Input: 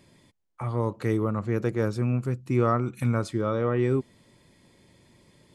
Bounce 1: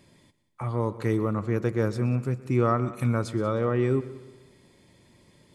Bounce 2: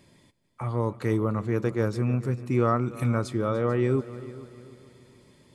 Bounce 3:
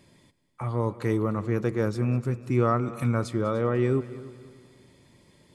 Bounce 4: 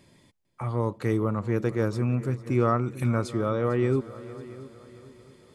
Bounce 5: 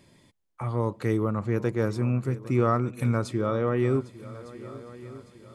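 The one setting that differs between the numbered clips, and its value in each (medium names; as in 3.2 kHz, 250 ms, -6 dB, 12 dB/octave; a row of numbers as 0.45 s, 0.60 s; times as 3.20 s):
multi-head delay, time: 62 ms, 147 ms, 99 ms, 225 ms, 402 ms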